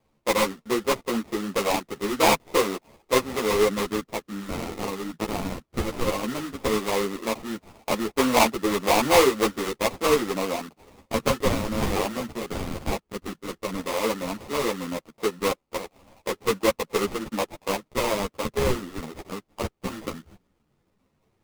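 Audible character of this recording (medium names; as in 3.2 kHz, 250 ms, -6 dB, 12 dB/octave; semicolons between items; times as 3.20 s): phasing stages 6, 0.14 Hz, lowest notch 600–2600 Hz; aliases and images of a low sample rate 1.6 kHz, jitter 20%; a shimmering, thickened sound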